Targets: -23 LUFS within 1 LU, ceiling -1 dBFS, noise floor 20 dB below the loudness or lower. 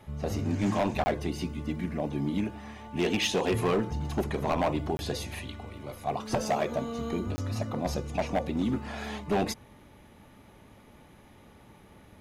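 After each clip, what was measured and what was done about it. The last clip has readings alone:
clipped samples 1.2%; clipping level -21.0 dBFS; dropouts 3; longest dropout 20 ms; loudness -31.0 LUFS; peak level -21.0 dBFS; loudness target -23.0 LUFS
-> clip repair -21 dBFS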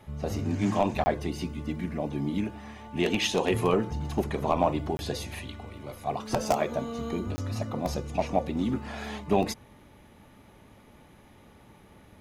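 clipped samples 0.0%; dropouts 3; longest dropout 20 ms
-> interpolate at 1.04/4.97/7.36 s, 20 ms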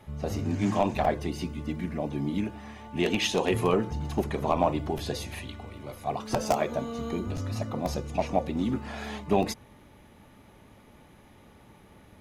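dropouts 0; loudness -29.5 LUFS; peak level -12.0 dBFS; loudness target -23.0 LUFS
-> trim +6.5 dB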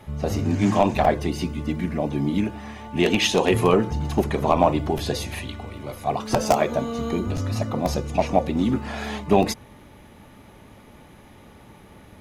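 loudness -23.0 LUFS; peak level -5.5 dBFS; noise floor -48 dBFS

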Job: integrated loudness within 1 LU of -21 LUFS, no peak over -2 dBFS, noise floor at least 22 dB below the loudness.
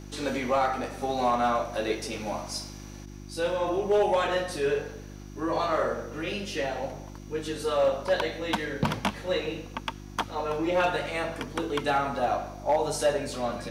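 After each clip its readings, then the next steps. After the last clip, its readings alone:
clipped samples 0.4%; clipping level -17.0 dBFS; hum 50 Hz; highest harmonic 350 Hz; hum level -41 dBFS; loudness -28.5 LUFS; peak level -17.0 dBFS; loudness target -21.0 LUFS
-> clip repair -17 dBFS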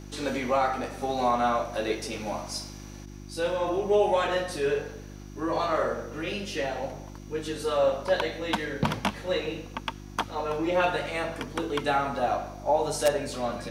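clipped samples 0.0%; hum 50 Hz; highest harmonic 350 Hz; hum level -41 dBFS
-> de-hum 50 Hz, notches 7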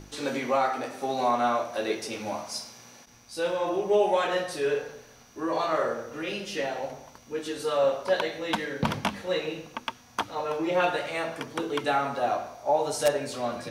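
hum not found; loudness -28.5 LUFS; peak level -8.0 dBFS; loudness target -21.0 LUFS
-> trim +7.5 dB; peak limiter -2 dBFS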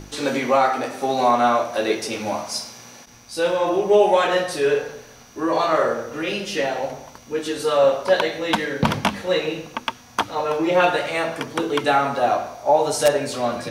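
loudness -21.0 LUFS; peak level -2.0 dBFS; noise floor -46 dBFS

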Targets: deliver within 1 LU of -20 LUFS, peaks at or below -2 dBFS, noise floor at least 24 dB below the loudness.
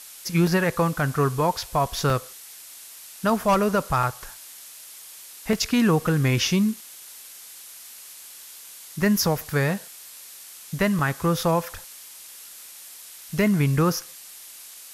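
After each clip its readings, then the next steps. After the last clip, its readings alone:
dropouts 6; longest dropout 2.1 ms; noise floor -44 dBFS; noise floor target -47 dBFS; loudness -23.0 LUFS; peak level -11.5 dBFS; loudness target -20.0 LUFS
-> interpolate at 0.47/2.10/4.03/5.53/9.41/10.99 s, 2.1 ms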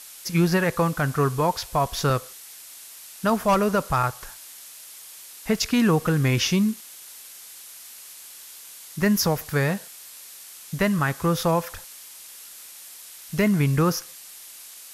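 dropouts 0; noise floor -44 dBFS; noise floor target -47 dBFS
-> noise reduction 6 dB, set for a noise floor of -44 dBFS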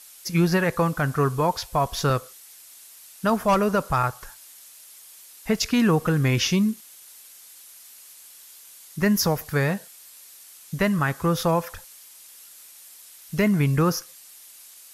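noise floor -48 dBFS; loudness -23.0 LUFS; peak level -11.5 dBFS; loudness target -20.0 LUFS
-> trim +3 dB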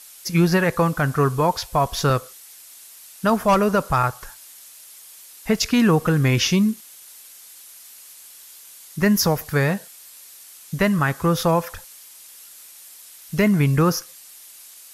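loudness -20.0 LUFS; peak level -8.5 dBFS; noise floor -45 dBFS

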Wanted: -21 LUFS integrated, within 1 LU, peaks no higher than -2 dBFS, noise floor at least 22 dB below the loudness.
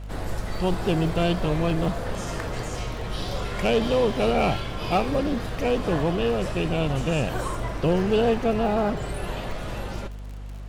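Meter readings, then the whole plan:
tick rate 51 per s; hum 50 Hz; highest harmonic 250 Hz; hum level -33 dBFS; loudness -25.5 LUFS; peak level -13.0 dBFS; loudness target -21.0 LUFS
-> de-click; de-hum 50 Hz, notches 5; trim +4.5 dB

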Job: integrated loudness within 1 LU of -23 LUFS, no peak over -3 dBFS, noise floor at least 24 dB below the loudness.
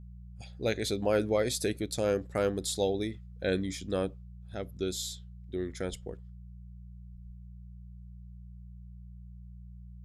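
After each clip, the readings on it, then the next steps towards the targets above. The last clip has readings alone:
hum 60 Hz; highest harmonic 180 Hz; hum level -45 dBFS; loudness -32.5 LUFS; peak level -15.0 dBFS; loudness target -23.0 LUFS
-> de-hum 60 Hz, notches 3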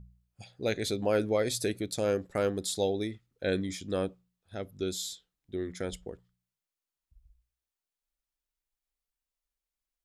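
hum not found; loudness -32.5 LUFS; peak level -15.5 dBFS; loudness target -23.0 LUFS
-> trim +9.5 dB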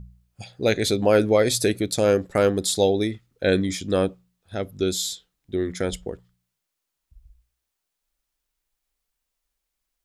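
loudness -23.0 LUFS; peak level -6.0 dBFS; noise floor -82 dBFS

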